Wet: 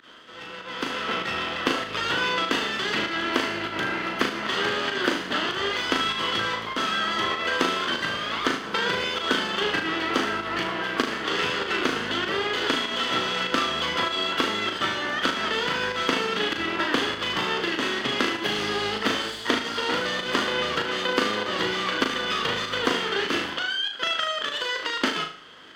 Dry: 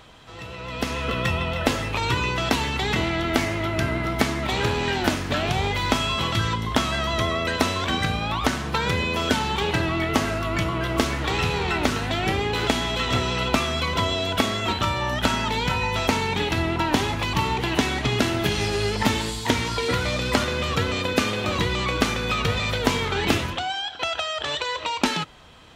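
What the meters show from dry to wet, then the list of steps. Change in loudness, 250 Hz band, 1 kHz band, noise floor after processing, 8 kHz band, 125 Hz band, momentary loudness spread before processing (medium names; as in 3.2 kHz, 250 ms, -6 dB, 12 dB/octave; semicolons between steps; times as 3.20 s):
-1.5 dB, -4.5 dB, -1.5 dB, -36 dBFS, -5.0 dB, -15.5 dB, 2 LU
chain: comb filter that takes the minimum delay 0.63 ms; bass shelf 140 Hz -3 dB; volume shaper 98 bpm, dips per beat 1, -24 dB, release 87 ms; three-band isolator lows -23 dB, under 230 Hz, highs -14 dB, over 4.8 kHz; flutter echo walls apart 6.5 m, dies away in 0.41 s; reverse; upward compressor, threshold -42 dBFS; reverse; trim +1 dB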